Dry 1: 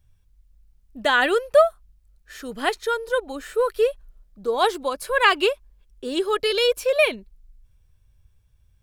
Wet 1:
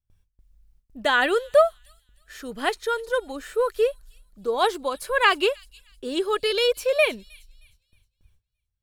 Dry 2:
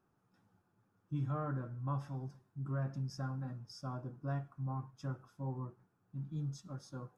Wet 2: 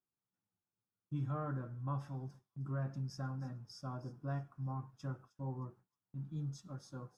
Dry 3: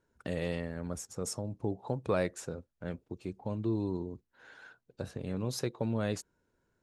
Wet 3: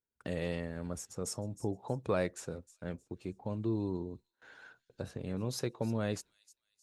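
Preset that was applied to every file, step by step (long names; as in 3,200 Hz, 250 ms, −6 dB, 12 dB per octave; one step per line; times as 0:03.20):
noise gate with hold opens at −49 dBFS
delay with a high-pass on its return 311 ms, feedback 32%, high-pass 5,000 Hz, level −14 dB
level −1.5 dB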